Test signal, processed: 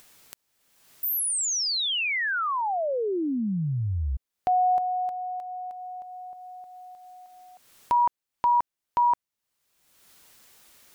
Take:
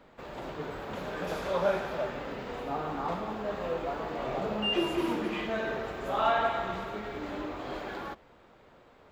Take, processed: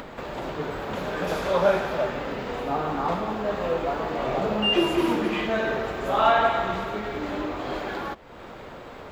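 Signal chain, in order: upward compressor, threshold -37 dBFS; gain +7 dB

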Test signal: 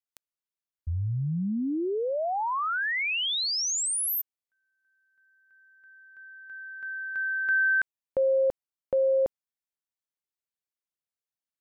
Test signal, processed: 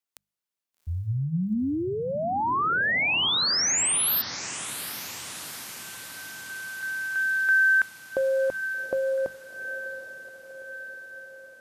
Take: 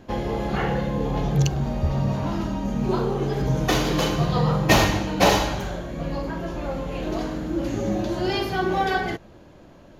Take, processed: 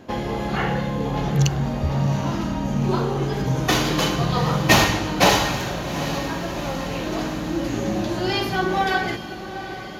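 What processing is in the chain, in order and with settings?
HPF 100 Hz 6 dB/oct; notches 50/100/150/200 Hz; dynamic EQ 480 Hz, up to -5 dB, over -35 dBFS, Q 1; on a send: diffused feedback echo 0.782 s, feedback 64%, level -12 dB; on the sum: gain +4 dB

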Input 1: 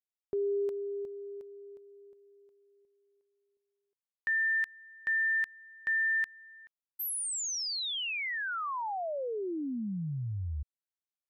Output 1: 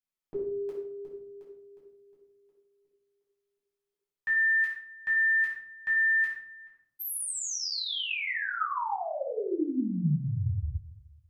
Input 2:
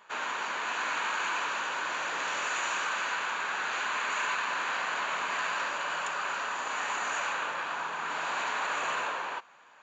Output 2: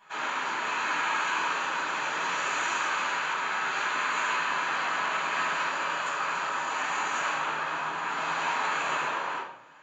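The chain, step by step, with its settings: shoebox room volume 930 m³, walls furnished, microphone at 8.6 m; gain -7 dB

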